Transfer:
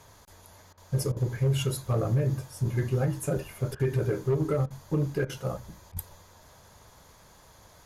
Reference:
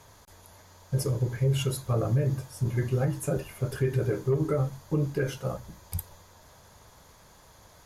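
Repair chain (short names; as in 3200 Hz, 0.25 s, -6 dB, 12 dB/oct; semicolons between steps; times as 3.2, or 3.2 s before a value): clip repair -19.5 dBFS; interpolate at 0.73/1.12/3.75/4.66/5.25/5.92, 44 ms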